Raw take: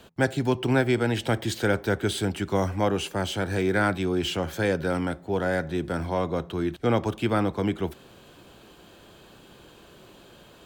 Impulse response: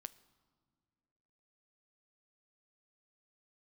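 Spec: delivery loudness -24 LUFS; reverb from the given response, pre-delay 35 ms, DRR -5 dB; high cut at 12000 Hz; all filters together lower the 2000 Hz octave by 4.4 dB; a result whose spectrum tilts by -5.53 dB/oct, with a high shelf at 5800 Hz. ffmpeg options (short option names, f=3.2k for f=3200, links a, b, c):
-filter_complex "[0:a]lowpass=12k,equalizer=f=2k:t=o:g=-7,highshelf=f=5.8k:g=5.5,asplit=2[a][b];[1:a]atrim=start_sample=2205,adelay=35[c];[b][c]afir=irnorm=-1:irlink=0,volume=10.5dB[d];[a][d]amix=inputs=2:normalize=0,volume=-3.5dB"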